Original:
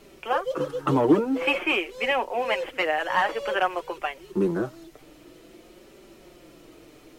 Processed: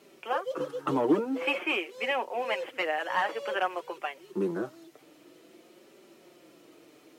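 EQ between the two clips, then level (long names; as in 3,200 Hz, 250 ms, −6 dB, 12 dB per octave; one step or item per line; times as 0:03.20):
high-pass filter 190 Hz 12 dB per octave
−5.0 dB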